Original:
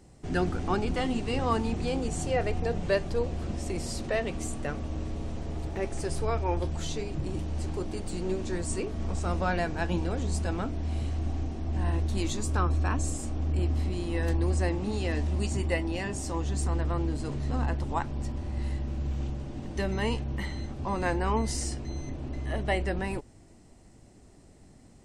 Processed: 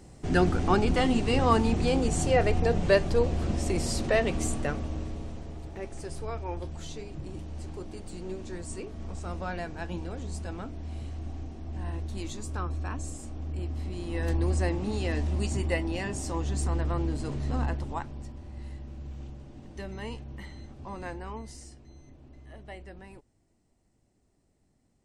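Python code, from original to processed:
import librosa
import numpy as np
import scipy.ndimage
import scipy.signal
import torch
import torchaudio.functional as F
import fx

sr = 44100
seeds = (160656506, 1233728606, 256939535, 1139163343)

y = fx.gain(x, sr, db=fx.line((4.51, 4.5), (5.59, -6.5), (13.74, -6.5), (14.37, 0.0), (17.62, 0.0), (18.34, -9.0), (21.0, -9.0), (21.75, -16.0)))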